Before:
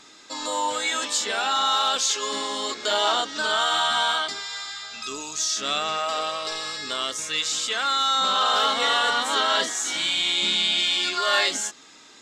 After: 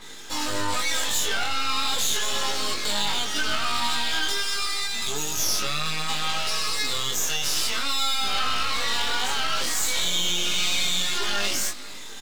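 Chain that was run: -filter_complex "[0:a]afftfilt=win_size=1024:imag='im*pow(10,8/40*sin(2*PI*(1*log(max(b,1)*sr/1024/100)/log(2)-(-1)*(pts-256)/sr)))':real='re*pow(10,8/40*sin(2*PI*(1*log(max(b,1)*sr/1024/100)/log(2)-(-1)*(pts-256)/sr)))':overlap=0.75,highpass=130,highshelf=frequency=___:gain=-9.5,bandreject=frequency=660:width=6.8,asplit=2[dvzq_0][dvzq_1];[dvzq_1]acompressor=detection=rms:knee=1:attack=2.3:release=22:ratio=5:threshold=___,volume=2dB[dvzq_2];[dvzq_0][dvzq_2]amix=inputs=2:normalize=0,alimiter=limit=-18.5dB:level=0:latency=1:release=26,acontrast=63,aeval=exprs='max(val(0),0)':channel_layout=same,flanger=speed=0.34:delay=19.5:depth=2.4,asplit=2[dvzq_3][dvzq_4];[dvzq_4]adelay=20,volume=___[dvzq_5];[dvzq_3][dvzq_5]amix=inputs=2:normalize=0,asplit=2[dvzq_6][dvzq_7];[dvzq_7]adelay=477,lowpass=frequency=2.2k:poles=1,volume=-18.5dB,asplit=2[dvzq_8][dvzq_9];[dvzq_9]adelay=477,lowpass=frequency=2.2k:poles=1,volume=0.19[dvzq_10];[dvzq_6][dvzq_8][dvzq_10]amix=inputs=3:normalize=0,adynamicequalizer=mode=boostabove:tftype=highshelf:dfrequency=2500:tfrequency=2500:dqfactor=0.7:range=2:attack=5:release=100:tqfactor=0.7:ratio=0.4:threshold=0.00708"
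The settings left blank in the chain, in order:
9.7k, -38dB, -12dB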